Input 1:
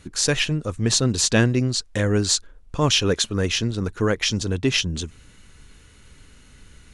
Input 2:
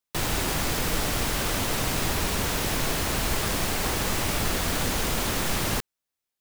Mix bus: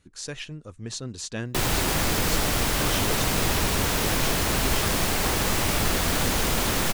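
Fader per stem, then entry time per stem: -14.5 dB, +2.5 dB; 0.00 s, 1.40 s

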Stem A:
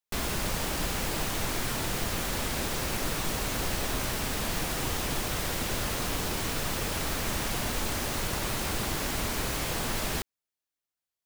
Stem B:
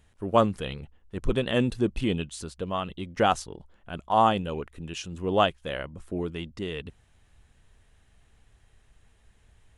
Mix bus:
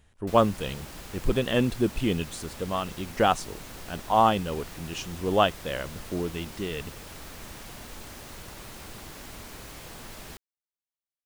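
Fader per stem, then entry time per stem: -12.0 dB, +0.5 dB; 0.15 s, 0.00 s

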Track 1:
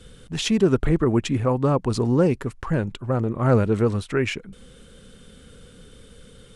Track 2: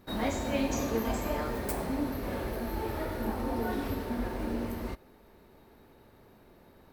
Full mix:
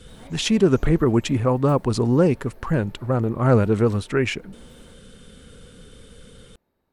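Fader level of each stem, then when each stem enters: +1.5 dB, -16.5 dB; 0.00 s, 0.00 s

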